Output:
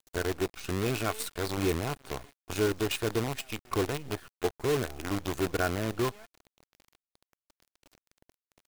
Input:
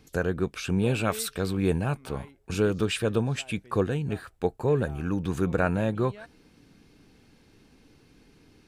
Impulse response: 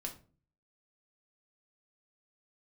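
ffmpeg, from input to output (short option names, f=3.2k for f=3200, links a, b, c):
-af "aecho=1:1:2.8:0.59,acrusher=bits=5:dc=4:mix=0:aa=0.000001,volume=-5dB"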